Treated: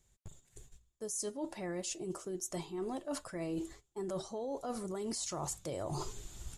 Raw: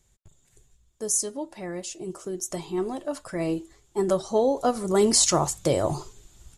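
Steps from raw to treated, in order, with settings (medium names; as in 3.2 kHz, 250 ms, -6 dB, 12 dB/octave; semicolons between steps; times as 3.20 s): peak limiter -18 dBFS, peak gain reduction 9.5 dB; reverse; compression 12:1, threshold -40 dBFS, peak gain reduction 18 dB; reverse; gate -58 dBFS, range -10 dB; trim +4 dB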